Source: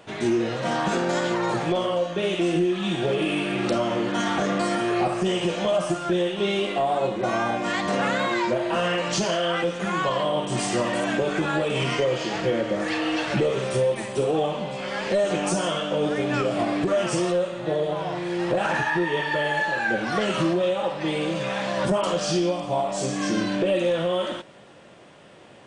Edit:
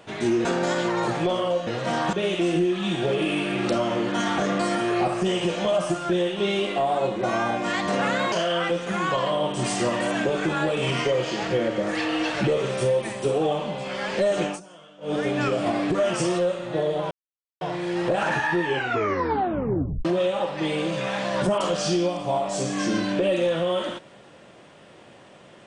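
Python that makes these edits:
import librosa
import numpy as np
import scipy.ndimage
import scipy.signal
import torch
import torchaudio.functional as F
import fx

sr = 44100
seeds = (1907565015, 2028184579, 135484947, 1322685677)

y = fx.edit(x, sr, fx.move(start_s=0.45, length_s=0.46, to_s=2.13),
    fx.cut(start_s=8.32, length_s=0.93),
    fx.fade_down_up(start_s=15.38, length_s=0.71, db=-22.0, fade_s=0.15),
    fx.insert_silence(at_s=18.04, length_s=0.5),
    fx.tape_stop(start_s=19.06, length_s=1.42), tone=tone)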